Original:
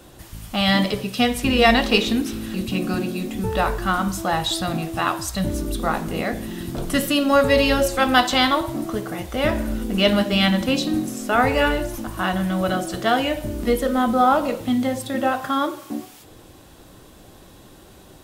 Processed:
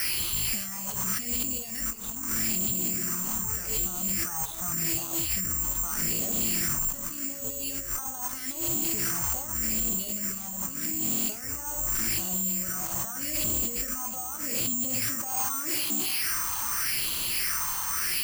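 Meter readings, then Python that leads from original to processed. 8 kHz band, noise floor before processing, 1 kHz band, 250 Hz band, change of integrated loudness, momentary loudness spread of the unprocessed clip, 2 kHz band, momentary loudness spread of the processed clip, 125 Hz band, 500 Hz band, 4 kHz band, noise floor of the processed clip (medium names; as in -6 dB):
+9.0 dB, -47 dBFS, -18.0 dB, -16.0 dB, -6.0 dB, 10 LU, -12.5 dB, 6 LU, -12.0 dB, -22.0 dB, -10.0 dB, -37 dBFS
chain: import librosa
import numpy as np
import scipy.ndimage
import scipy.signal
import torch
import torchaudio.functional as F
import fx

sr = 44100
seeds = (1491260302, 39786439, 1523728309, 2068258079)

p1 = fx.dmg_noise_band(x, sr, seeds[0], low_hz=990.0, high_hz=3100.0, level_db=-34.0)
p2 = fx.hum_notches(p1, sr, base_hz=50, count=5)
p3 = fx.over_compress(p2, sr, threshold_db=-30.0, ratio=-1.0)
p4 = fx.phaser_stages(p3, sr, stages=4, low_hz=370.0, high_hz=1700.0, hz=0.83, feedback_pct=45)
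p5 = 10.0 ** (-30.5 / 20.0) * np.tanh(p4 / 10.0 ** (-30.5 / 20.0))
p6 = p5 + fx.echo_single(p5, sr, ms=717, db=-17.5, dry=0)
p7 = (np.kron(scipy.signal.resample_poly(p6, 1, 6), np.eye(6)[0]) * 6)[:len(p6)]
p8 = fx.attack_slew(p7, sr, db_per_s=110.0)
y = p8 * 10.0 ** (-2.0 / 20.0)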